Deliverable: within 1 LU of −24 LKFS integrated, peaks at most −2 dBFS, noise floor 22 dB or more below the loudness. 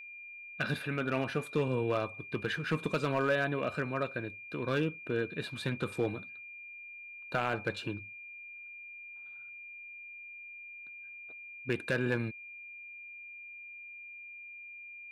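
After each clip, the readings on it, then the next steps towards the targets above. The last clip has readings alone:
share of clipped samples 0.3%; peaks flattened at −22.0 dBFS; interfering tone 2,400 Hz; level of the tone −45 dBFS; integrated loudness −36.5 LKFS; sample peak −22.0 dBFS; target loudness −24.0 LKFS
→ clipped peaks rebuilt −22 dBFS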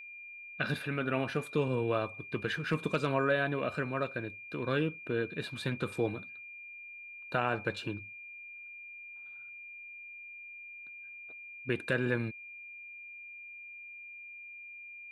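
share of clipped samples 0.0%; interfering tone 2,400 Hz; level of the tone −45 dBFS
→ notch filter 2,400 Hz, Q 30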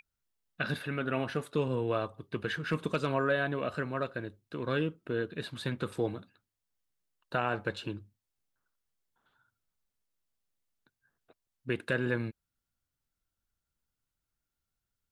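interfering tone none found; integrated loudness −34.0 LKFS; sample peak −16.0 dBFS; target loudness −24.0 LKFS
→ level +10 dB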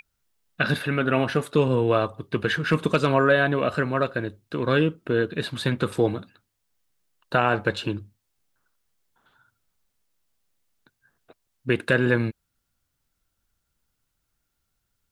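integrated loudness −24.0 LKFS; sample peak −6.0 dBFS; background noise floor −77 dBFS

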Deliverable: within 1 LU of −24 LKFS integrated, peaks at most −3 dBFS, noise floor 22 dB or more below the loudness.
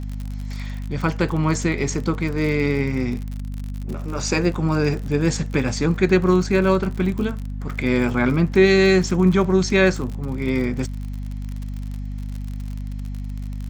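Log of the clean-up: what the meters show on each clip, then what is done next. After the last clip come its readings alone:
crackle rate 50 per second; mains hum 50 Hz; hum harmonics up to 250 Hz; level of the hum −26 dBFS; integrated loudness −20.5 LKFS; sample peak −3.5 dBFS; target loudness −24.0 LKFS
→ click removal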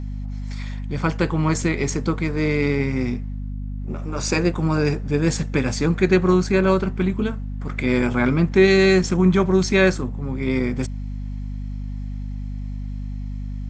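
crackle rate 0.15 per second; mains hum 50 Hz; hum harmonics up to 250 Hz; level of the hum −26 dBFS
→ mains-hum notches 50/100/150/200/250 Hz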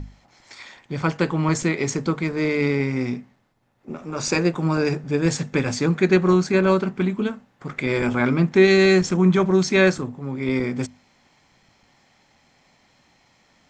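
mains hum none found; integrated loudness −20.5 LKFS; sample peak −4.0 dBFS; target loudness −24.0 LKFS
→ level −3.5 dB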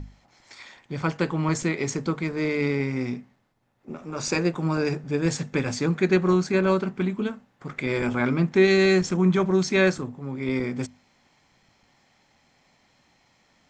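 integrated loudness −24.0 LKFS; sample peak −7.5 dBFS; background noise floor −64 dBFS

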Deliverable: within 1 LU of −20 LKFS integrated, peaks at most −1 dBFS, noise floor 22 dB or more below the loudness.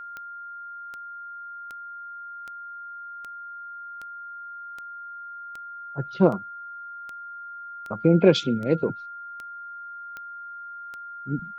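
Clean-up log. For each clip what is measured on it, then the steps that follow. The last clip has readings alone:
number of clicks 15; interfering tone 1,400 Hz; level of the tone −36 dBFS; integrated loudness −29.5 LKFS; sample peak −4.0 dBFS; target loudness −20.0 LKFS
→ click removal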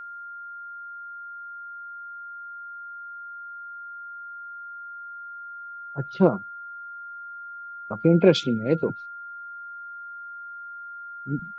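number of clicks 0; interfering tone 1,400 Hz; level of the tone −36 dBFS
→ notch filter 1,400 Hz, Q 30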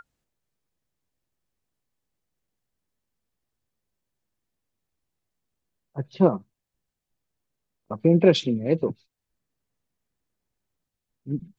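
interfering tone none found; integrated loudness −22.5 LKFS; sample peak −4.0 dBFS; target loudness −20.0 LKFS
→ level +2.5 dB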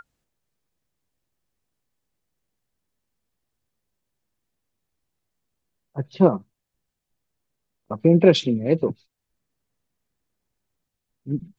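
integrated loudness −20.0 LKFS; sample peak −1.5 dBFS; background noise floor −82 dBFS

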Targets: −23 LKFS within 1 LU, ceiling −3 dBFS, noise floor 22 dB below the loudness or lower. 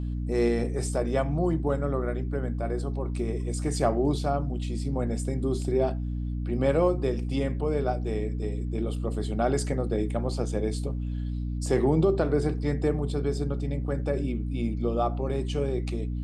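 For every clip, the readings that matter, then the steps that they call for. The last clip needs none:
mains hum 60 Hz; hum harmonics up to 300 Hz; level of the hum −28 dBFS; integrated loudness −28.0 LKFS; sample peak −11.0 dBFS; target loudness −23.0 LKFS
→ mains-hum notches 60/120/180/240/300 Hz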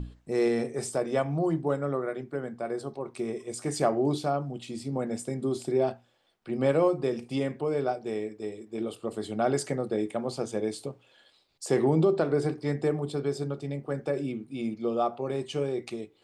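mains hum none found; integrated loudness −30.0 LKFS; sample peak −12.5 dBFS; target loudness −23.0 LKFS
→ level +7 dB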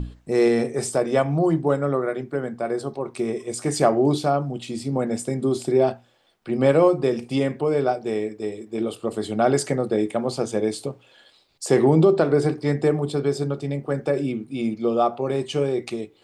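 integrated loudness −23.0 LKFS; sample peak −5.5 dBFS; background noise floor −57 dBFS

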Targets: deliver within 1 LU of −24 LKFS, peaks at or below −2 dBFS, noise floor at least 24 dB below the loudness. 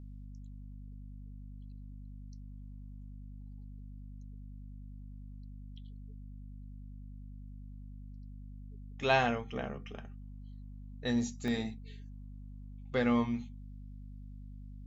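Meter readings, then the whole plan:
number of dropouts 1; longest dropout 1.2 ms; mains hum 50 Hz; hum harmonics up to 250 Hz; level of the hum −44 dBFS; integrated loudness −33.5 LKFS; sample peak −12.5 dBFS; target loudness −24.0 LKFS
→ repair the gap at 0:11.48, 1.2 ms
hum removal 50 Hz, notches 5
level +9.5 dB

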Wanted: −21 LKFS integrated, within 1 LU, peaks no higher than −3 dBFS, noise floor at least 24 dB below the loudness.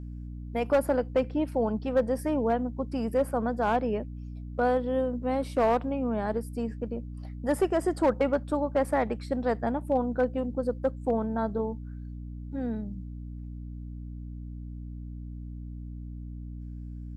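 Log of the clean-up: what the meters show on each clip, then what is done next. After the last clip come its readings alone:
share of clipped samples 0.3%; peaks flattened at −17.0 dBFS; mains hum 60 Hz; hum harmonics up to 300 Hz; level of the hum −36 dBFS; integrated loudness −29.0 LKFS; sample peak −17.0 dBFS; target loudness −21.0 LKFS
→ clipped peaks rebuilt −17 dBFS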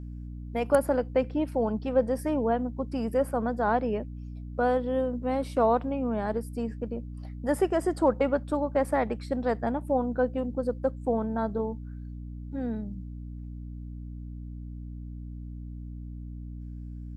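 share of clipped samples 0.0%; mains hum 60 Hz; hum harmonics up to 300 Hz; level of the hum −36 dBFS
→ mains-hum notches 60/120/180/240/300 Hz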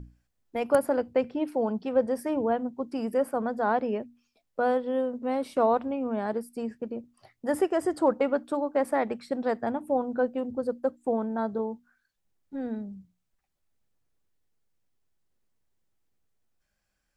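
mains hum none found; integrated loudness −29.0 LKFS; sample peak −8.0 dBFS; target loudness −21.0 LKFS
→ level +8 dB
brickwall limiter −3 dBFS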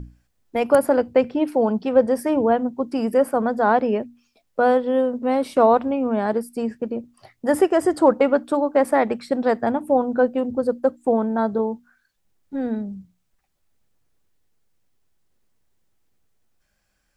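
integrated loudness −21.0 LKFS; sample peak −3.0 dBFS; background noise floor −70 dBFS

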